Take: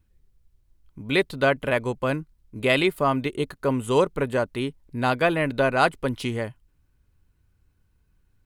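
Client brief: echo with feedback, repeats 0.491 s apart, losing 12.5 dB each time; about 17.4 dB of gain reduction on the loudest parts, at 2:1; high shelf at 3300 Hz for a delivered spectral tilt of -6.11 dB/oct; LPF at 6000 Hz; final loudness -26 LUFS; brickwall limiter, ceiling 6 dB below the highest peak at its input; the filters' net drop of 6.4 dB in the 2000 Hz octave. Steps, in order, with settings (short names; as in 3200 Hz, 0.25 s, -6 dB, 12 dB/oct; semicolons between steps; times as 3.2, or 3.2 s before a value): LPF 6000 Hz; bell 2000 Hz -6 dB; high shelf 3300 Hz -8.5 dB; compressor 2:1, threshold -50 dBFS; limiter -32 dBFS; feedback echo 0.491 s, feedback 24%, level -12.5 dB; gain +17.5 dB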